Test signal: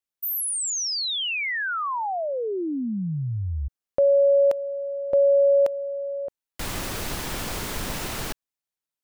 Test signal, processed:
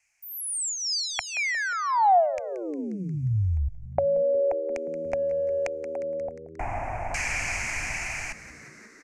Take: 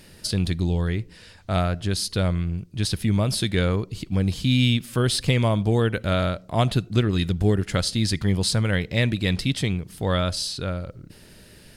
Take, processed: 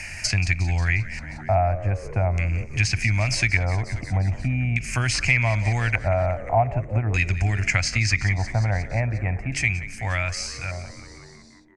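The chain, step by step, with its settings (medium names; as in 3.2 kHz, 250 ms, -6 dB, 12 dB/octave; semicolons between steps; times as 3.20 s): fade out at the end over 3.85 s; de-hum 141.3 Hz, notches 4; compression, threshold -20 dBFS; LFO low-pass square 0.42 Hz 780–4400 Hz; FFT filter 110 Hz 0 dB, 180 Hz -14 dB, 260 Hz -11 dB, 470 Hz -19 dB, 700 Hz +2 dB, 1.2 kHz -5 dB, 2.4 kHz +14 dB, 3.6 kHz -24 dB, 6.5 kHz +14 dB; on a send: frequency-shifting echo 178 ms, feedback 62%, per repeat -79 Hz, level -16 dB; on the sum: low-pass that closes with the level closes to 1.1 kHz, closed at -12.5 dBFS; treble shelf 11 kHz -8 dB; three bands compressed up and down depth 40%; trim +5 dB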